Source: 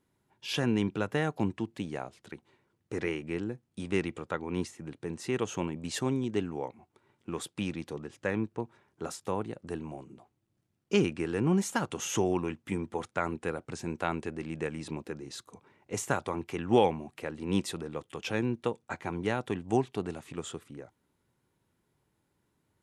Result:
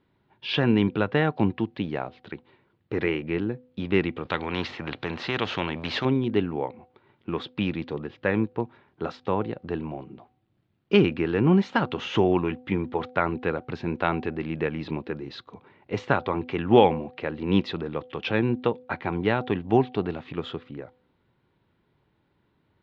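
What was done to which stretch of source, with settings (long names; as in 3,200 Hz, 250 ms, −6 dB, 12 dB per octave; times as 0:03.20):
0:04.25–0:06.05: every bin compressed towards the loudest bin 2 to 1
whole clip: Butterworth low-pass 4,100 Hz 36 dB per octave; hum removal 251.3 Hz, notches 3; level +7 dB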